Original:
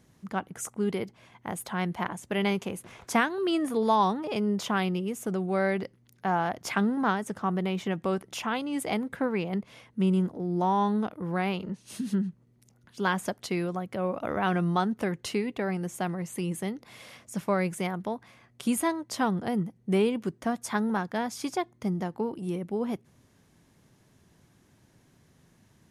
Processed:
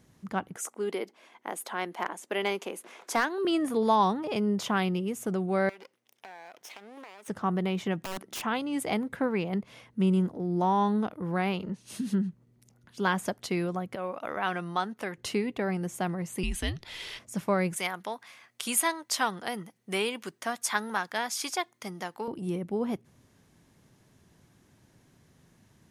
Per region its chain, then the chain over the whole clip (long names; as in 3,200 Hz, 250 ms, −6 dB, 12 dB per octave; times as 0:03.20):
0:00.56–0:03.45: high-pass filter 290 Hz 24 dB per octave + hard clipping −17 dBFS
0:05.69–0:07.28: lower of the sound and its delayed copy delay 0.35 ms + high-pass filter 600 Hz + downward compressor 8 to 1, threshold −43 dBFS
0:08.03–0:08.43: low shelf with overshoot 160 Hz −8.5 dB, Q 1.5 + downward compressor, threshold −29 dBFS + wrap-around overflow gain 29.5 dB
0:13.95–0:15.18: low-pass filter 1,500 Hz 6 dB per octave + spectral tilt +4.5 dB per octave
0:16.43–0:17.19: parametric band 3,600 Hz +12.5 dB 1.6 octaves + frequency shifter −130 Hz
0:17.76–0:22.28: high-pass filter 320 Hz 6 dB per octave + tilt shelving filter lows −7.5 dB, about 800 Hz
whole clip: no processing